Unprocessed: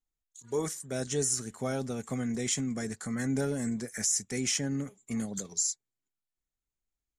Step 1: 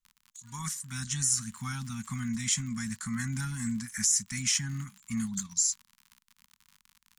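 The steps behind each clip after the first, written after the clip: crackle 70 per s -42 dBFS; elliptic band-stop 220–1000 Hz, stop band 40 dB; trim +3 dB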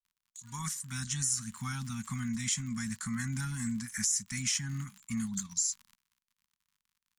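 gate -57 dBFS, range -18 dB; compression 1.5:1, threshold -34 dBFS, peak gain reduction 4.5 dB

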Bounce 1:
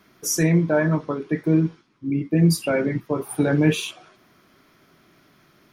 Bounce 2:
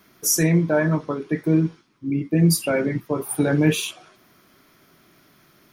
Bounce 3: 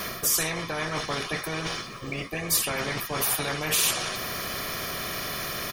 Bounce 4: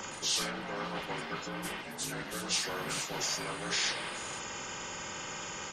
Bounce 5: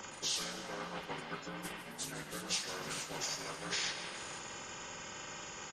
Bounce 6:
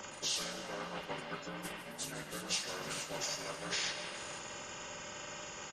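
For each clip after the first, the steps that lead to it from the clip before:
treble shelf 7.7 kHz +9.5 dB
comb 1.7 ms, depth 69%; reverse; compression 6:1, threshold -27 dBFS, peak gain reduction 14 dB; reverse; spectrum-flattening compressor 4:1; trim +7.5 dB
frequency axis rescaled in octaves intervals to 81%; ever faster or slower copies 114 ms, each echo +5 st, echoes 2, each echo -6 dB; trim -7 dB
transient shaper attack +4 dB, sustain -5 dB; feedback delay 154 ms, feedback 58%, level -13 dB; on a send at -14 dB: reverberation RT60 0.80 s, pre-delay 118 ms; on the sum: trim -6 dB
small resonant body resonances 590/2800 Hz, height 9 dB, ringing for 90 ms

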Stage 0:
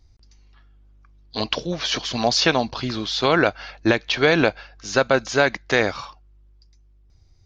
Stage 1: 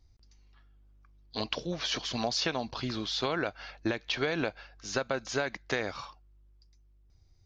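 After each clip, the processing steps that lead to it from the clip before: compression 6:1, threshold -19 dBFS, peak gain reduction 7.5 dB; trim -7.5 dB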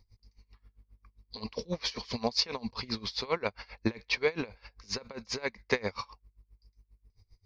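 rippled EQ curve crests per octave 0.89, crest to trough 10 dB; logarithmic tremolo 7.5 Hz, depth 24 dB; trim +4 dB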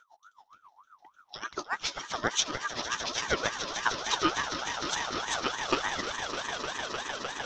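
echo with a slow build-up 152 ms, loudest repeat 8, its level -12 dB; ring modulator with a swept carrier 1.1 kHz, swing 30%, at 3.4 Hz; trim +3.5 dB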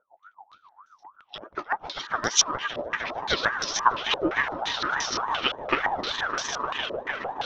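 step-sequenced low-pass 5.8 Hz 570–5600 Hz; trim +1 dB

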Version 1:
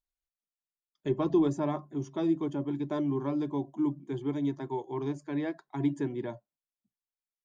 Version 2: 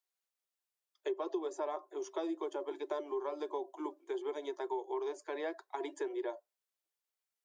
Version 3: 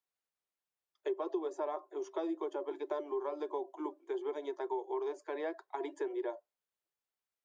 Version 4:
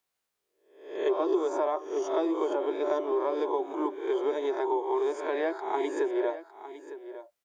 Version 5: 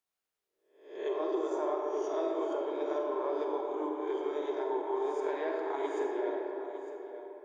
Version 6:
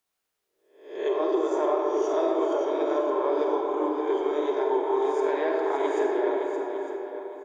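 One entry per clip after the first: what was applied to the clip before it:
steep high-pass 360 Hz 72 dB/octave; dynamic bell 2.3 kHz, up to -4 dB, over -55 dBFS, Q 0.97; compression 6:1, threshold -37 dBFS, peak gain reduction 13 dB; trim +3.5 dB
treble shelf 3.3 kHz -9.5 dB; trim +1 dB
reverse spectral sustain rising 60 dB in 0.59 s; delay 906 ms -14 dB; trim +7.5 dB
reverberation RT60 3.9 s, pre-delay 5 ms, DRR -0.5 dB; trim -8 dB
delay 569 ms -8.5 dB; trim +7.5 dB

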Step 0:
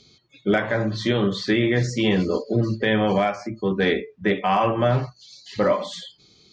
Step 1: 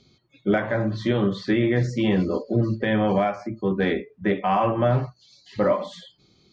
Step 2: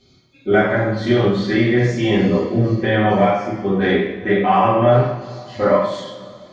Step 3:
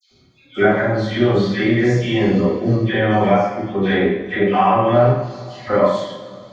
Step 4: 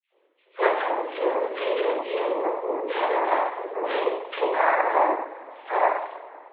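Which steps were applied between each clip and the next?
treble shelf 2.5 kHz -11 dB; band-stop 440 Hz, Q 12
two-slope reverb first 0.73 s, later 3 s, from -18 dB, DRR -10 dB; trim -3 dB
phase dispersion lows, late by 112 ms, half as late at 1.8 kHz
local Wiener filter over 9 samples; noise-vocoded speech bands 6; mistuned SSB +130 Hz 260–3100 Hz; trim -6 dB

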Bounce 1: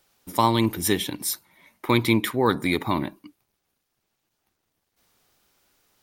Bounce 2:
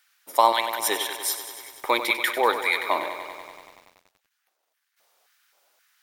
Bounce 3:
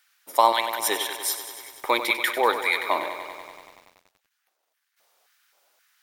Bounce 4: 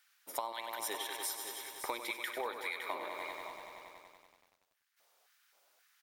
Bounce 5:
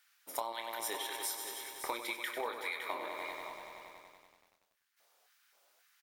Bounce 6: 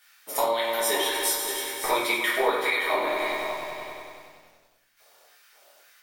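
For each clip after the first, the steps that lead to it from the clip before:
bass shelf 290 Hz -7.5 dB; LFO high-pass square 1.9 Hz 590–1600 Hz; bit-crushed delay 96 ms, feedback 80%, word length 8-bit, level -11 dB
no audible change
compression 8:1, threshold -30 dBFS, peak gain reduction 18 dB; delay 561 ms -9.5 dB; trim -5.5 dB
doubling 26 ms -8.5 dB
simulated room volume 64 m³, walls mixed, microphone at 1.4 m; trim +7 dB

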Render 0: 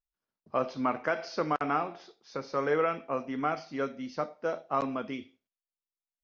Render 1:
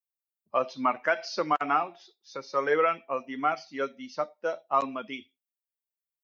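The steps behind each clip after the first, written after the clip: expander on every frequency bin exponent 1.5; high-pass 600 Hz 6 dB/octave; trim +8 dB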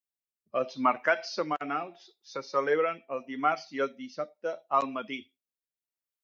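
rotary cabinet horn 0.75 Hz; trim +1.5 dB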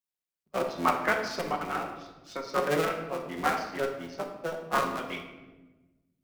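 cycle switcher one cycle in 3, muted; simulated room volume 680 m³, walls mixed, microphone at 1 m

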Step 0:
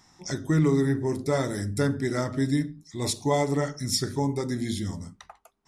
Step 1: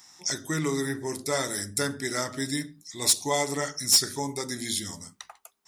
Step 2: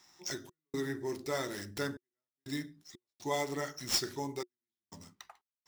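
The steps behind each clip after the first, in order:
tilt EQ +3.5 dB/octave; in parallel at -10 dB: integer overflow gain 11 dB; on the sum: trim -2.5 dB
median filter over 5 samples; trance gate "xx.xxxxx.." 61 bpm -60 dB; peaking EQ 360 Hz +8.5 dB 0.2 oct; trim -7 dB

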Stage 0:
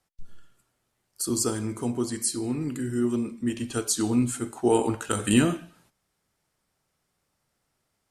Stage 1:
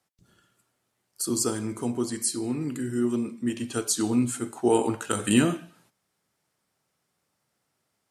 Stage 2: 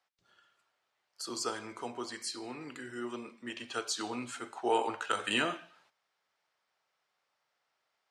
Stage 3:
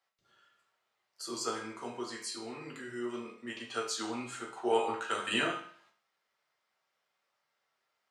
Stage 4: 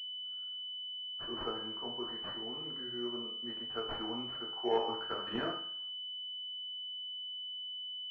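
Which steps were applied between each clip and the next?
high-pass 110 Hz 12 dB/octave
three-band isolator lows -21 dB, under 530 Hz, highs -23 dB, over 5.4 kHz
reverberation RT60 0.45 s, pre-delay 5 ms, DRR -1.5 dB; trim -4 dB
class-D stage that switches slowly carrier 3 kHz; trim -2.5 dB

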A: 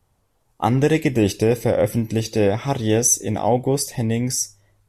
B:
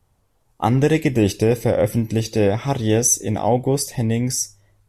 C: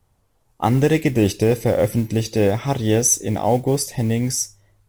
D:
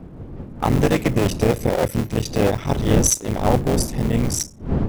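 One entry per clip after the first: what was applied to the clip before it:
bass shelf 150 Hz +3 dB
modulation noise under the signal 28 dB
cycle switcher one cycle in 3, muted; wind noise 210 Hz -25 dBFS

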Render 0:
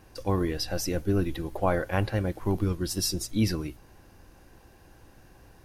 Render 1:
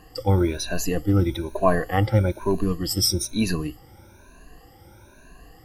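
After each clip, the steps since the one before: drifting ripple filter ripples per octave 1.5, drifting +1.1 Hz, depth 21 dB; trim +1 dB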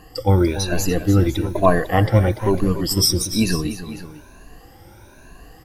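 multi-tap echo 291/500 ms -12/-15.5 dB; trim +4 dB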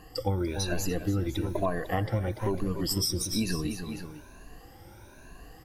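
compression 6:1, threshold -20 dBFS, peak gain reduction 11 dB; trim -5 dB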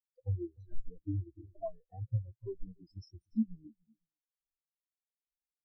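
spectral contrast expander 4:1; trim -6.5 dB

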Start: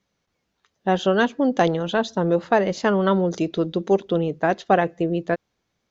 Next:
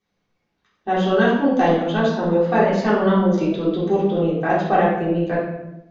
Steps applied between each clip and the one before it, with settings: reverberation RT60 0.90 s, pre-delay 3 ms, DRR -10 dB; trim -8.5 dB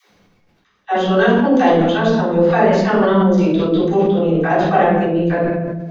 reverse; upward compressor, threshold -38 dBFS; reverse; phase dispersion lows, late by 112 ms, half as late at 320 Hz; decay stretcher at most 26 dB/s; trim +3 dB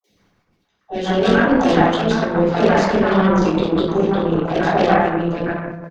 Chebyshev shaper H 7 -22 dB, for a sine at -1 dBFS; three bands offset in time lows, highs, mids 40/160 ms, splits 630/2300 Hz; harmonic-percussive split harmonic -6 dB; trim +5 dB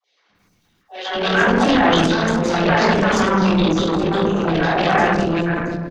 treble shelf 2.4 kHz +8 dB; transient shaper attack -8 dB, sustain +9 dB; three bands offset in time mids, lows, highs 200/350 ms, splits 500/5200 Hz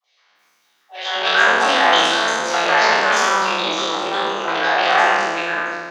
spectral sustain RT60 1.34 s; high-pass 700 Hz 12 dB/octave; trim +1 dB

